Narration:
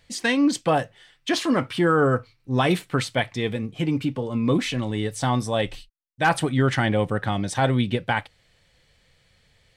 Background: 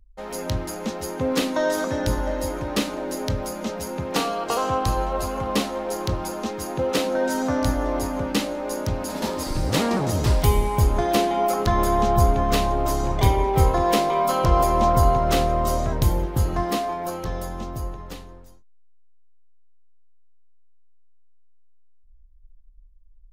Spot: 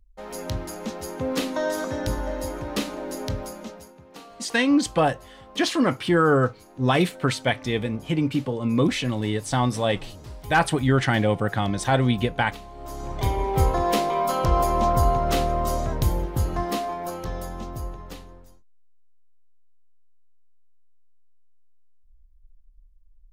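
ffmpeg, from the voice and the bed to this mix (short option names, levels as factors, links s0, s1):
-filter_complex "[0:a]adelay=4300,volume=1.06[s0];[1:a]volume=5.31,afade=t=out:st=3.34:d=0.6:silence=0.141254,afade=t=in:st=12.74:d=0.86:silence=0.125893[s1];[s0][s1]amix=inputs=2:normalize=0"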